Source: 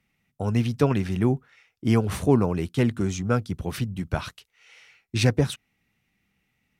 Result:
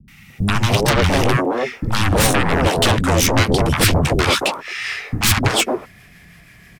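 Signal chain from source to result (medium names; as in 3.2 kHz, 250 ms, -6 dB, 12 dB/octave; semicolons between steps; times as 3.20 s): pitch bend over the whole clip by -2.5 st starting unshifted; peak limiter -13.5 dBFS, peak gain reduction 5 dB; compression 6:1, threshold -28 dBFS, peak gain reduction 10 dB; sine folder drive 18 dB, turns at -17.5 dBFS; three bands offset in time lows, highs, mids 80/300 ms, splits 270/940 Hz; trim +7 dB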